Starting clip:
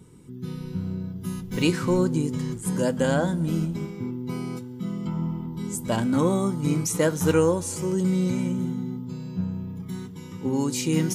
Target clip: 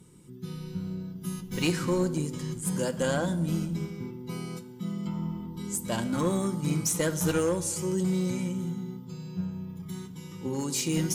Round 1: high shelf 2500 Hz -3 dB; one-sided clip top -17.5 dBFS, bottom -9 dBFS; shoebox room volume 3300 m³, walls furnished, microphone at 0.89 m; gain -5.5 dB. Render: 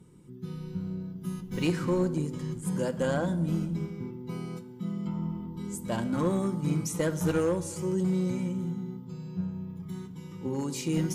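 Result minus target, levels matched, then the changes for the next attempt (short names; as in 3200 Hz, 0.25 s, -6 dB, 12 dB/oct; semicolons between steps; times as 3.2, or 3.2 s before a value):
4000 Hz band -5.5 dB
change: high shelf 2500 Hz +6.5 dB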